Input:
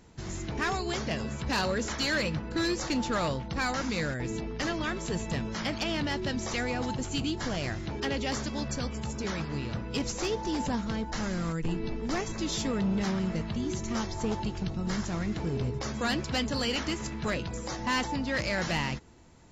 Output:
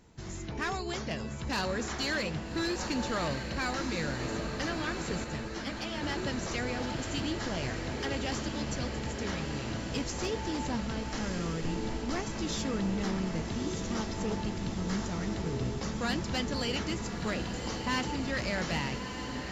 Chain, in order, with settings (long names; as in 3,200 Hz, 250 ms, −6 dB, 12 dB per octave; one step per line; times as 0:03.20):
on a send: feedback delay with all-pass diffusion 1,257 ms, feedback 75%, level −7 dB
0:05.24–0:06.03: on the sum: string-ensemble chorus
level −3.5 dB